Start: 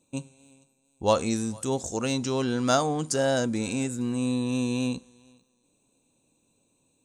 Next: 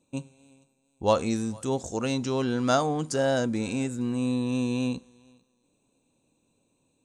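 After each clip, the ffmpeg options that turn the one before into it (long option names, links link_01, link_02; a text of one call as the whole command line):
ffmpeg -i in.wav -af "highshelf=frequency=5700:gain=-8.5" out.wav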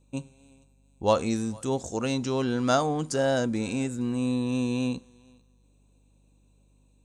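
ffmpeg -i in.wav -af "aeval=exprs='val(0)+0.000891*(sin(2*PI*50*n/s)+sin(2*PI*2*50*n/s)/2+sin(2*PI*3*50*n/s)/3+sin(2*PI*4*50*n/s)/4+sin(2*PI*5*50*n/s)/5)':channel_layout=same" out.wav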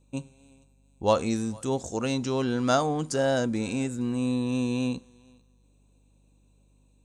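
ffmpeg -i in.wav -af anull out.wav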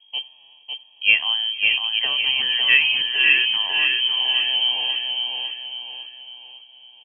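ffmpeg -i in.wav -filter_complex "[0:a]aecho=1:1:1.3:0.58,asplit=2[link_01][link_02];[link_02]aecho=0:1:552|1104|1656|2208|2760:0.631|0.271|0.117|0.0502|0.0216[link_03];[link_01][link_03]amix=inputs=2:normalize=0,lowpass=frequency=2800:width_type=q:width=0.5098,lowpass=frequency=2800:width_type=q:width=0.6013,lowpass=frequency=2800:width_type=q:width=0.9,lowpass=frequency=2800:width_type=q:width=2.563,afreqshift=-3300,volume=5dB" out.wav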